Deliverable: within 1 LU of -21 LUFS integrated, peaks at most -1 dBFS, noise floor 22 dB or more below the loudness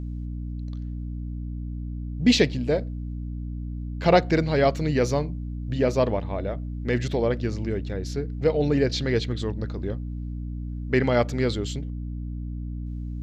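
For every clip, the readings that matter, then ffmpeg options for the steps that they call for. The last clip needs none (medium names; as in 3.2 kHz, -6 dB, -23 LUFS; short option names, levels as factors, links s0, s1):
hum 60 Hz; highest harmonic 300 Hz; hum level -29 dBFS; loudness -26.5 LUFS; peak level -6.5 dBFS; loudness target -21.0 LUFS
-> -af "bandreject=f=60:t=h:w=6,bandreject=f=120:t=h:w=6,bandreject=f=180:t=h:w=6,bandreject=f=240:t=h:w=6,bandreject=f=300:t=h:w=6"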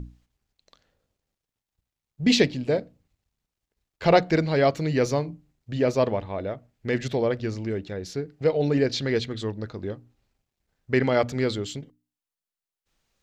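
hum not found; loudness -25.0 LUFS; peak level -6.5 dBFS; loudness target -21.0 LUFS
-> -af "volume=1.58"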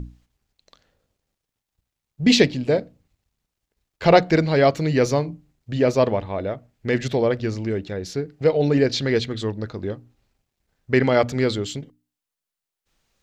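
loudness -21.5 LUFS; peak level -2.5 dBFS; noise floor -86 dBFS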